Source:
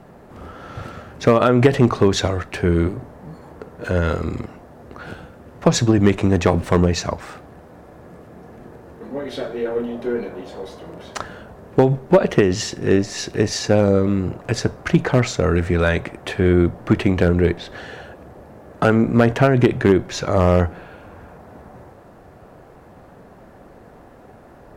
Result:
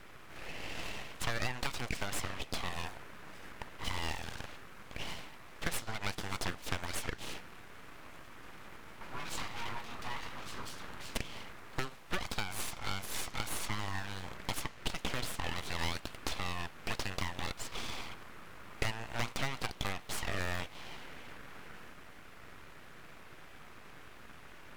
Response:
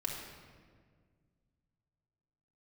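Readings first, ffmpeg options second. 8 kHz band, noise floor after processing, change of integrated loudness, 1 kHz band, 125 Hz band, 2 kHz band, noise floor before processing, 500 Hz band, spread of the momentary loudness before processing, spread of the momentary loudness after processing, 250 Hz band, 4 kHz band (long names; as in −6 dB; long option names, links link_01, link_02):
−11.0 dB, −51 dBFS, −21.0 dB, −15.0 dB, −23.5 dB, −11.5 dB, −45 dBFS, −28.0 dB, 19 LU, 16 LU, −27.5 dB, −9.0 dB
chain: -filter_complex "[0:a]highpass=730,acrossover=split=1400|5500[link_01][link_02][link_03];[link_01]acompressor=threshold=-38dB:ratio=4[link_04];[link_02]acompressor=threshold=-37dB:ratio=4[link_05];[link_03]acompressor=threshold=-50dB:ratio=4[link_06];[link_04][link_05][link_06]amix=inputs=3:normalize=0,aeval=exprs='abs(val(0))':channel_layout=same,volume=1dB"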